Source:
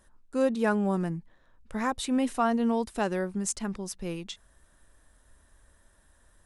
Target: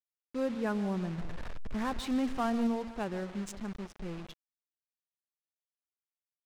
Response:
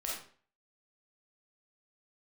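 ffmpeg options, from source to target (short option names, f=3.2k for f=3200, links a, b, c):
-filter_complex "[0:a]asettb=1/sr,asplit=3[a][b][c];[a]atrim=end=1.184[d];[b]atrim=start=1.18:end=2.67,asetpts=PTS-STARTPTS,afade=t=in:d=0.004:c=qsin,afade=t=out:st=1.486:d=0.004:c=qsin,aeval=exprs='val(0)+0.5*0.0335*sgn(val(0))':c=same[e];[c]atrim=start=2.666[f];[d][e]acrossfade=d=0.004:c1=hsin:c2=qsin[g];[g][f]acrossfade=d=0.004:c1=qsin:c2=hsin,lowshelf=f=150:g=9,aecho=1:1:150|300:0.158|0.0285,asplit=2[h][i];[1:a]atrim=start_sample=2205,adelay=120[j];[i][j]afir=irnorm=-1:irlink=0,volume=-21dB[k];[h][k]amix=inputs=2:normalize=0,acrusher=bits=5:mix=0:aa=0.000001,adynamicsmooth=sensitivity=6:basefreq=1.5k,volume=-8.5dB"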